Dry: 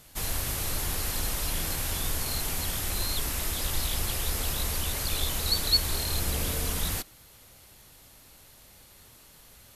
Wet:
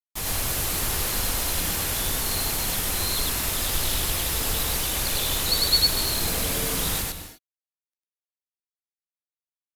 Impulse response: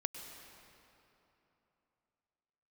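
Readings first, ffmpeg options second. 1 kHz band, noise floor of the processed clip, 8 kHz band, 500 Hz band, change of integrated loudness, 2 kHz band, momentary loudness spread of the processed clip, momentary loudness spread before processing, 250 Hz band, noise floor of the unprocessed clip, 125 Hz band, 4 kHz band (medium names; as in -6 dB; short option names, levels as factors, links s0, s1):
+5.5 dB, under -85 dBFS, +5.5 dB, +5.5 dB, +5.5 dB, +5.5 dB, 5 LU, 5 LU, +4.5 dB, -54 dBFS, +1.5 dB, +5.5 dB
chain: -filter_complex "[0:a]acrusher=bits=5:mix=0:aa=0.5,lowshelf=f=110:g=-4.5,asplit=2[s0][s1];[1:a]atrim=start_sample=2205,afade=t=out:st=0.31:d=0.01,atrim=end_sample=14112,adelay=100[s2];[s1][s2]afir=irnorm=-1:irlink=0,volume=1.06[s3];[s0][s3]amix=inputs=2:normalize=0,volume=1.33"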